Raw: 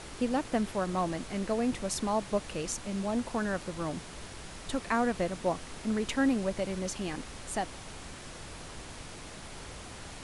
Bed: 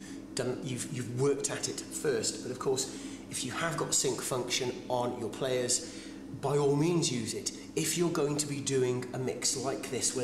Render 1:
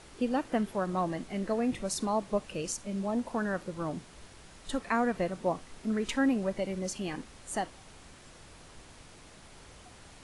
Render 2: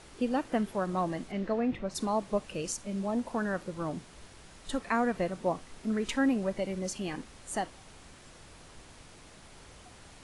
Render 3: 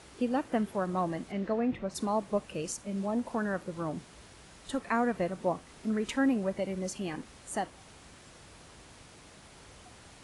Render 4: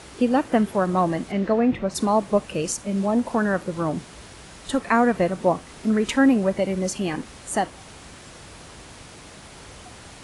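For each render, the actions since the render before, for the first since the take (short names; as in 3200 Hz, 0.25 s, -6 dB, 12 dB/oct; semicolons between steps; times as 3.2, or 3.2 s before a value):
noise print and reduce 8 dB
1.31–1.94 LPF 5200 Hz -> 2300 Hz
HPF 46 Hz; dynamic EQ 4500 Hz, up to -3 dB, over -50 dBFS, Q 0.7
gain +10 dB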